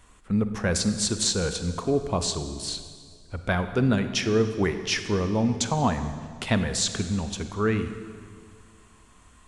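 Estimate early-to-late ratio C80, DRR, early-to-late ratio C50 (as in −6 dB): 10.5 dB, 9.0 dB, 9.5 dB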